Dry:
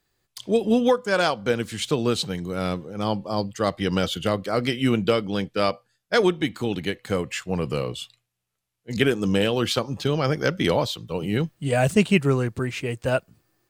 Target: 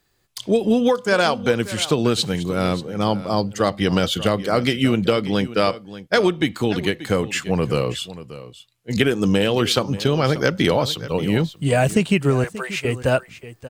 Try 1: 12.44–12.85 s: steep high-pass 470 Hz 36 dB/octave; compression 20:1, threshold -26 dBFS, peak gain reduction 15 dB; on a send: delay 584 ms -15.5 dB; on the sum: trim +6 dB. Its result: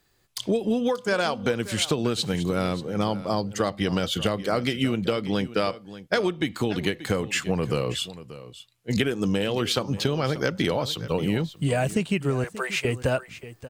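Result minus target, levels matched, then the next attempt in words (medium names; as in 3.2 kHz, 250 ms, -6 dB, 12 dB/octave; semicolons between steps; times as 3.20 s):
compression: peak gain reduction +7 dB
12.44–12.85 s: steep high-pass 470 Hz 36 dB/octave; compression 20:1, threshold -18.5 dBFS, peak gain reduction 8 dB; on a send: delay 584 ms -15.5 dB; on the sum: trim +6 dB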